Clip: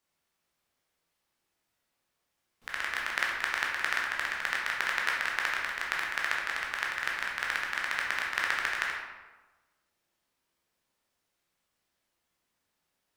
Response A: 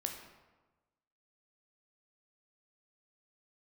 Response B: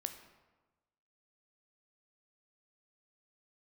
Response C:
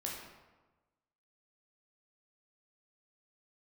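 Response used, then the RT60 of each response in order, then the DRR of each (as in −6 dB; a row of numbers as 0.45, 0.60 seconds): C; 1.2, 1.2, 1.2 seconds; 3.0, 7.0, −3.0 decibels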